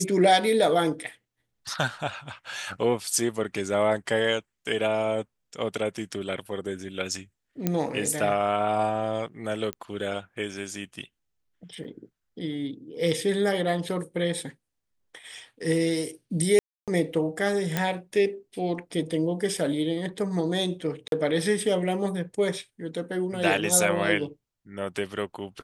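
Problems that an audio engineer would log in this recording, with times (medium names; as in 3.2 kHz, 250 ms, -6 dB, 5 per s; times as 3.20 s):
7.67 s: pop -10 dBFS
9.73 s: pop -17 dBFS
11.84–11.85 s: dropout 6.7 ms
16.59–16.88 s: dropout 287 ms
17.77 s: pop -10 dBFS
21.08–21.12 s: dropout 42 ms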